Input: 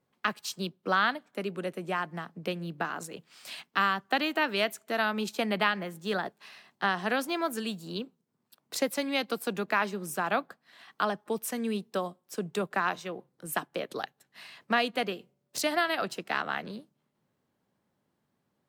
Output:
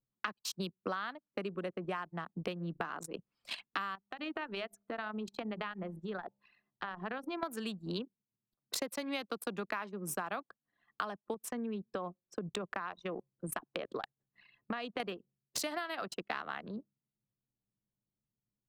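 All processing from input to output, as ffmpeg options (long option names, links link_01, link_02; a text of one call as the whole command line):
ffmpeg -i in.wav -filter_complex "[0:a]asettb=1/sr,asplit=3[link_01][link_02][link_03];[link_01]atrim=end=3.954[link_04];[link_02]atrim=start=3.95:end=7.43,asetpts=PTS-STARTPTS,afade=type=in:duration=0.004:curve=qsin,afade=type=out:start_time=3.476:duration=0.004:curve=qsin,acompressor=threshold=-40dB:ratio=4:attack=3.2:release=140:knee=1:detection=peak,bandreject=frequency=67.24:width_type=h:width=4,bandreject=frequency=134.48:width_type=h:width=4,bandreject=frequency=201.72:width_type=h:width=4,bandreject=frequency=268.96:width_type=h:width=4,bandreject=frequency=336.2:width_type=h:width=4,bandreject=frequency=403.44:width_type=h:width=4,bandreject=frequency=470.68:width_type=h:width=4,bandreject=frequency=537.92:width_type=h:width=4,bandreject=frequency=605.16:width_type=h:width=4,bandreject=frequency=672.4:width_type=h:width=4,bandreject=frequency=739.64:width_type=h:width=4,bandreject=frequency=806.88:width_type=h:width=4,bandreject=frequency=874.12:width_type=h:width=4,bandreject=frequency=941.36:width_type=h:width=4[link_05];[link_03]atrim=start=7.426[link_06];[link_04][link_05]acrossfade=duration=0.004:curve1=hsin:curve2=qsin[link_07];[link_07][link_06]acrossfade=duration=0.004:curve1=qsin:curve2=hsin,asettb=1/sr,asplit=3[link_08][link_09][link_10];[link_08]atrim=end=11.344[link_11];[link_09]atrim=start=11.34:end=15,asetpts=PTS-STARTPTS,afade=type=in:duration=0.004:curve=qsin,afade=type=out:start_time=3.656:duration=0.004:curve=qsin,highshelf=frequency=11000:gain=-11,acompressor=threshold=-36dB:ratio=2.5:attack=3.2:release=140:knee=1:detection=peak[link_12];[link_10]atrim=start=14.996[link_13];[link_11][link_12]acrossfade=duration=0.004:curve1=hsin:curve2=qsin[link_14];[link_14][link_13]acrossfade=duration=0.004:curve1=qsin:curve2=hsin,anlmdn=0.631,equalizer=frequency=1100:width=2.9:gain=4,acompressor=threshold=-40dB:ratio=12,volume=5.5dB" out.wav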